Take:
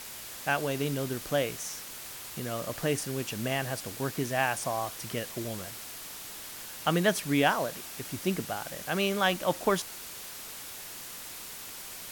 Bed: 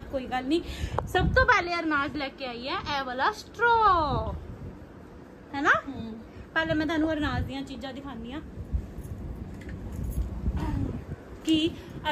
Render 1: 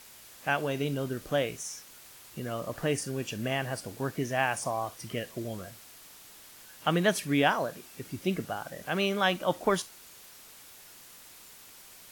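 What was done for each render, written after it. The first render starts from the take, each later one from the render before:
noise reduction from a noise print 9 dB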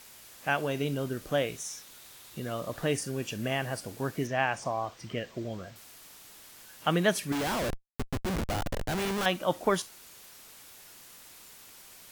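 0:01.49–0:02.98: parametric band 3,700 Hz +6 dB 0.24 octaves
0:04.27–0:05.76: moving average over 4 samples
0:07.32–0:09.26: comparator with hysteresis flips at −35 dBFS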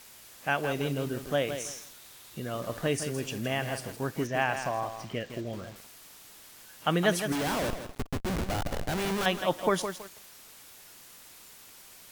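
feedback echo at a low word length 163 ms, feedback 35%, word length 7 bits, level −8 dB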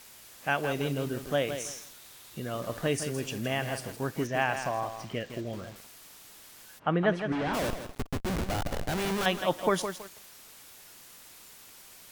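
0:06.78–0:07.53: low-pass filter 1,500 Hz → 2,800 Hz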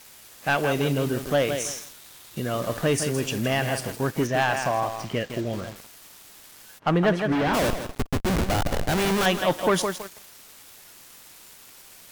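leveller curve on the samples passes 2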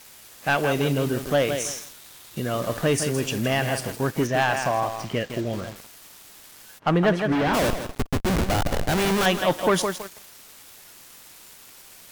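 level +1 dB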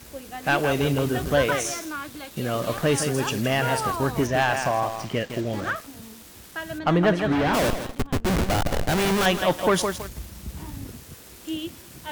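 mix in bed −7 dB

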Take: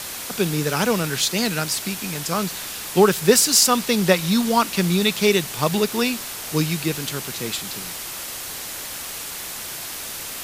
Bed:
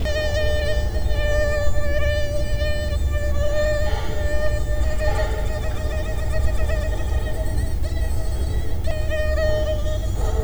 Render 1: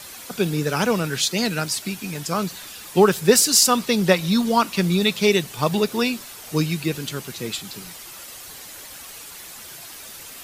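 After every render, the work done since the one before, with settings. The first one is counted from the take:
broadband denoise 9 dB, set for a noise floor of −32 dBFS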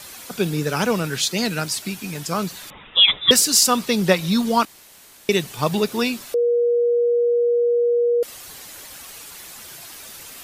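0:02.70–0:03.31: voice inversion scrambler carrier 3,700 Hz
0:04.65–0:05.29: fill with room tone
0:06.34–0:08.23: beep over 477 Hz −15 dBFS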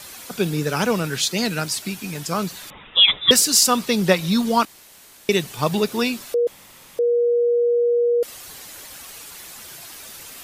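0:06.47–0:06.99: fill with room tone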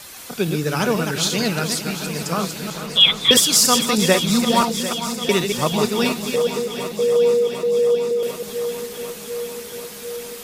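delay that plays each chunk backwards 159 ms, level −5.5 dB
on a send: feedback echo with a long and a short gap by turns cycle 746 ms, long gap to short 1.5 to 1, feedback 69%, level −12 dB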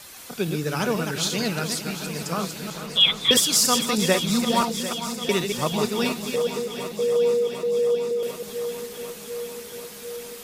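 level −4.5 dB

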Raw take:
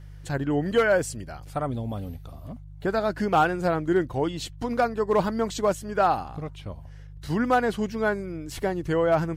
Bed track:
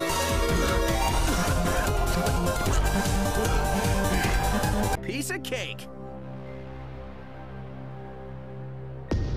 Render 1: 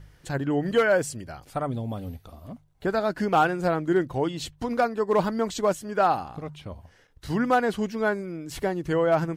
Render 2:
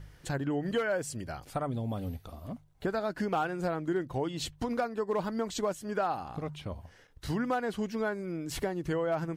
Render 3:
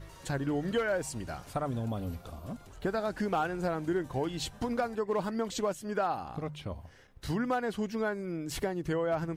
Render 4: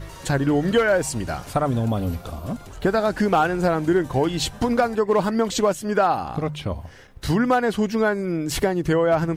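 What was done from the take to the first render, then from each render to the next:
hum removal 50 Hz, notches 3
downward compressor 3 to 1, threshold −30 dBFS, peak gain reduction 10.5 dB
mix in bed track −27.5 dB
level +11.5 dB

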